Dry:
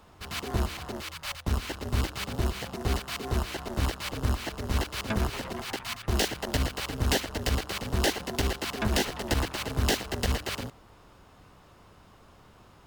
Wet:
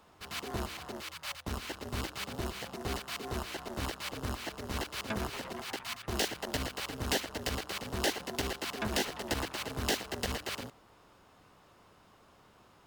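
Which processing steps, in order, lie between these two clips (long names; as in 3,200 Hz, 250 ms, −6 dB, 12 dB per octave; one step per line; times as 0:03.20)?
low-shelf EQ 120 Hz −11 dB
level −4 dB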